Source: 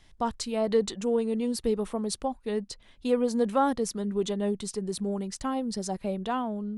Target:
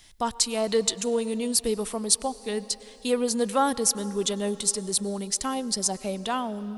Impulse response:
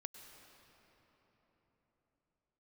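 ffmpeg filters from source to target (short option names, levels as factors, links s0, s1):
-filter_complex "[0:a]crystalizer=i=4.5:c=0,asplit=2[s0][s1];[1:a]atrim=start_sample=2205,lowshelf=f=200:g=-11.5,highshelf=f=8700:g=-7[s2];[s1][s2]afir=irnorm=-1:irlink=0,volume=0.794[s3];[s0][s3]amix=inputs=2:normalize=0,volume=0.75"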